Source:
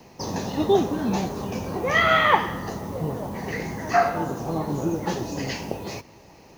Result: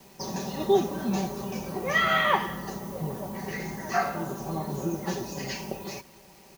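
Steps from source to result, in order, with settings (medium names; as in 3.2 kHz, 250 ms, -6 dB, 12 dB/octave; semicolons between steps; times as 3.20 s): treble shelf 8.5 kHz +10 dB; comb 5.2 ms, depth 70%; bit crusher 8-bit; trim -6.5 dB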